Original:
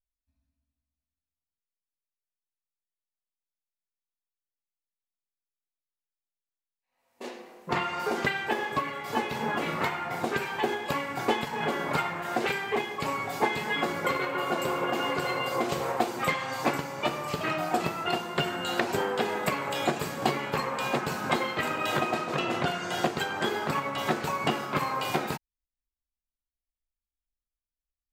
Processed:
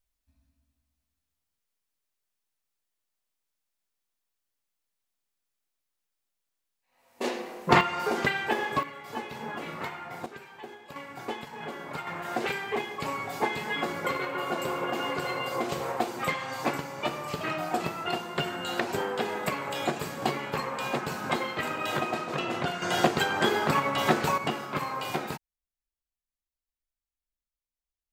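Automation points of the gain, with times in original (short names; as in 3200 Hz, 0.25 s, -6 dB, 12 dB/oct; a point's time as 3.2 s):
+9 dB
from 7.81 s +1 dB
from 8.83 s -7 dB
from 10.26 s -15.5 dB
from 10.96 s -9 dB
from 12.07 s -2 dB
from 22.82 s +4 dB
from 24.38 s -3 dB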